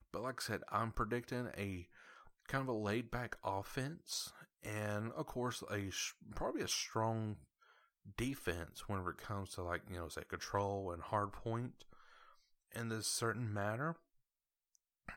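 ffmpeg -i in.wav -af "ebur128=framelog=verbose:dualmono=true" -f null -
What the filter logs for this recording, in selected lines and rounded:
Integrated loudness:
  I:         -38.8 LUFS
  Threshold: -49.4 LUFS
Loudness range:
  LRA:         2.1 LU
  Threshold: -59.7 LUFS
  LRA low:   -40.6 LUFS
  LRA high:  -38.5 LUFS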